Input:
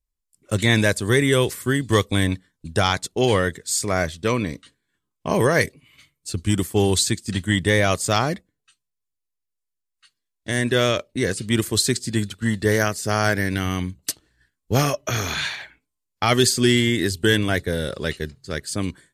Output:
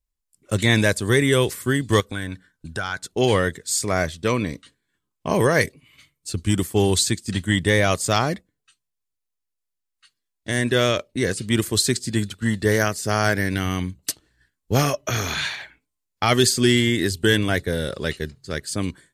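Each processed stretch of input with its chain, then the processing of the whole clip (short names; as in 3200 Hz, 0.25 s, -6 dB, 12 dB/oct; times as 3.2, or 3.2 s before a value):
2–3.1 bell 1500 Hz +14 dB 0.27 oct + compressor 2:1, threshold -32 dBFS
whole clip: dry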